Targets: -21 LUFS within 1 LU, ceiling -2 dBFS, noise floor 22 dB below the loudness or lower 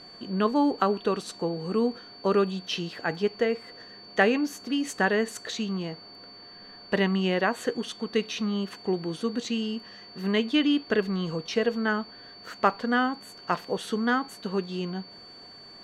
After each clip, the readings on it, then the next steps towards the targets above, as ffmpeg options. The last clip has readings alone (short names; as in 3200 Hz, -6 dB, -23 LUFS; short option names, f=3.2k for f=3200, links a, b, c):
steady tone 4500 Hz; tone level -46 dBFS; loudness -28.0 LUFS; peak -6.5 dBFS; loudness target -21.0 LUFS
-> -af "bandreject=f=4.5k:w=30"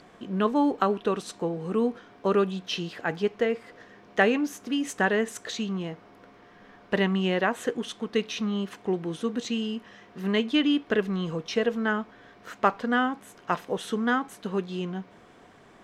steady tone none; loudness -28.0 LUFS; peak -6.5 dBFS; loudness target -21.0 LUFS
-> -af "volume=7dB,alimiter=limit=-2dB:level=0:latency=1"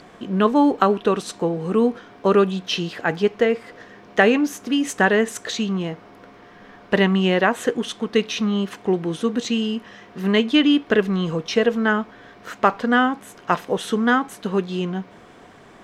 loudness -21.0 LUFS; peak -2.0 dBFS; noise floor -47 dBFS